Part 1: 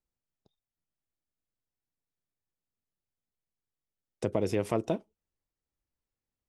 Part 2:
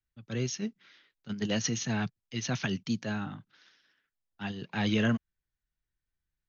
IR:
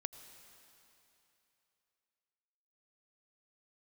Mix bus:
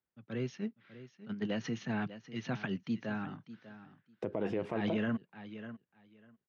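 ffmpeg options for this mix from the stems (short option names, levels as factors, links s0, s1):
-filter_complex "[0:a]volume=0.944[s0];[1:a]volume=0.75,asplit=2[s1][s2];[s2]volume=0.178,aecho=0:1:596|1192|1788:1|0.16|0.0256[s3];[s0][s1][s3]amix=inputs=3:normalize=0,highpass=140,lowpass=2200,alimiter=level_in=1.06:limit=0.0631:level=0:latency=1:release=56,volume=0.944"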